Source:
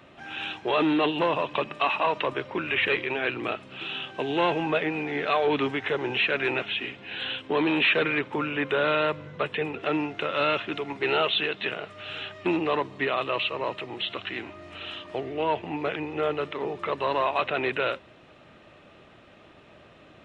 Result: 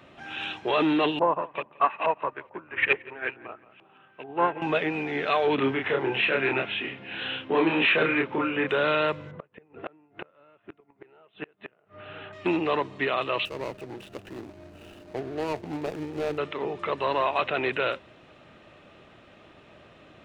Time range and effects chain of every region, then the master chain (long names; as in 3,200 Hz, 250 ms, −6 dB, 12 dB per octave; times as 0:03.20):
0:01.19–0:04.62: auto-filter low-pass saw up 2.3 Hz 730–2,600 Hz + repeating echo 174 ms, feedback 33%, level −10.5 dB + expander for the loud parts 2.5 to 1, over −30 dBFS
0:05.55–0:08.69: band-pass filter 100–2,900 Hz + double-tracking delay 30 ms −2.5 dB
0:09.31–0:12.33: low-pass filter 1,500 Hz + gate with flip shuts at −23 dBFS, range −31 dB
0:13.45–0:16.38: running median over 41 samples + highs frequency-modulated by the lows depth 0.15 ms
whole clip: no processing